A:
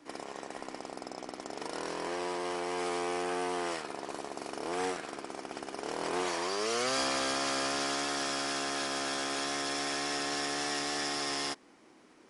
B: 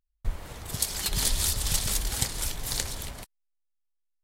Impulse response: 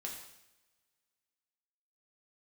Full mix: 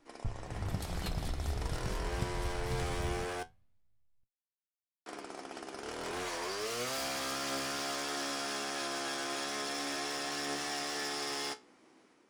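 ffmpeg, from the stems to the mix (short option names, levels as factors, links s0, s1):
-filter_complex "[0:a]dynaudnorm=f=300:g=3:m=1.88,aeval=exprs='0.0668*(abs(mod(val(0)/0.0668+3,4)-2)-1)':c=same,volume=0.631,asplit=3[s0][s1][s2];[s0]atrim=end=3.43,asetpts=PTS-STARTPTS,afade=t=out:st=3.426:d=0.004:c=hsin[s3];[s1]atrim=start=3.43:end=5.06,asetpts=PTS-STARTPTS,volume=0[s4];[s2]atrim=start=5.06,asetpts=PTS-STARTPTS,afade=t=in:d=0.004:c=hsin[s5];[s3][s4][s5]concat=n=3:v=0:a=1[s6];[1:a]bass=f=250:g=14,treble=f=4000:g=-14,acompressor=threshold=0.0562:ratio=6,volume=0.75,asplit=2[s7][s8];[s8]volume=0.668[s9];[2:a]atrim=start_sample=2205[s10];[s9][s10]afir=irnorm=-1:irlink=0[s11];[s6][s7][s11]amix=inputs=3:normalize=0,lowshelf=f=60:g=-6.5,flanger=delay=8.5:depth=8:regen=61:speed=0.22:shape=sinusoidal"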